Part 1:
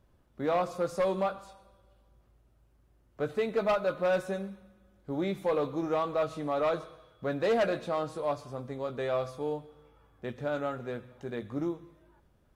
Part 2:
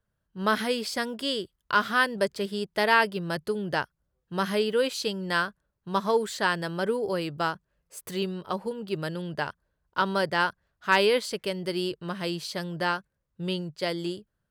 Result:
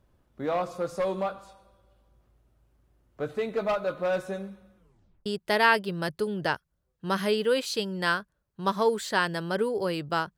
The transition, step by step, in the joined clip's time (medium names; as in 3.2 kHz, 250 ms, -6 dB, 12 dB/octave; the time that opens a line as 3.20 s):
part 1
4.77 s: tape stop 0.49 s
5.26 s: go over to part 2 from 2.54 s